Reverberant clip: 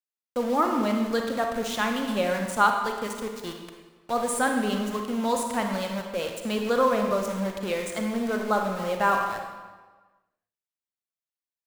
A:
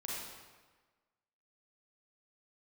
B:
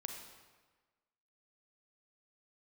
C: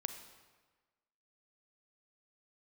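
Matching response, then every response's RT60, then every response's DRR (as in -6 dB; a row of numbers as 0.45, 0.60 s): B; 1.4, 1.4, 1.4 s; -5.5, 3.0, 7.5 dB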